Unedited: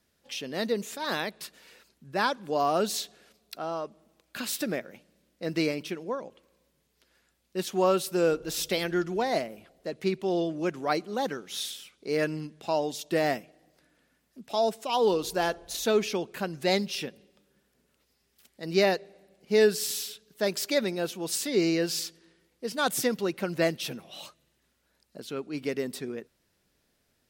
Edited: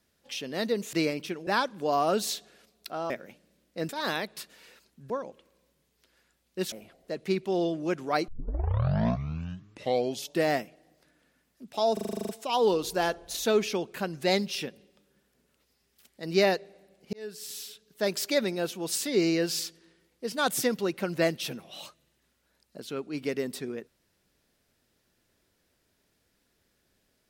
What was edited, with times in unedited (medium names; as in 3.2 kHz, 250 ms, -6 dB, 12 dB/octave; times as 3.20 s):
0.93–2.14 s: swap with 5.54–6.08 s
3.77–4.75 s: delete
7.70–9.48 s: delete
11.04 s: tape start 2.08 s
14.69 s: stutter 0.04 s, 10 plays
19.53–20.51 s: fade in